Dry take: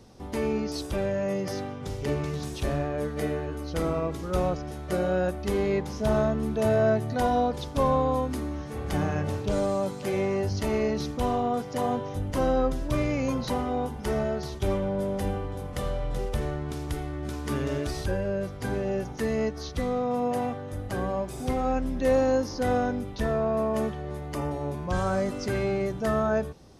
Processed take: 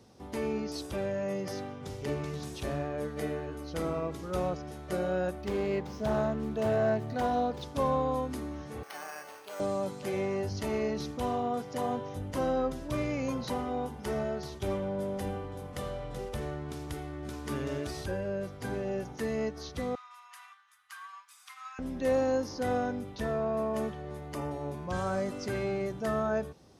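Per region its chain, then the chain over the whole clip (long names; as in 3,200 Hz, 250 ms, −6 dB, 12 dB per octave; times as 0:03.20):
0:05.41–0:07.63: running median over 5 samples + highs frequency-modulated by the lows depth 0.16 ms
0:08.83–0:09.60: high-pass filter 940 Hz + bad sample-rate conversion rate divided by 6×, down filtered, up hold
0:19.95–0:21.79: elliptic high-pass filter 1,100 Hz, stop band 50 dB + expander for the loud parts, over −53 dBFS
whole clip: high-pass filter 61 Hz; low-shelf EQ 140 Hz −3 dB; level −4.5 dB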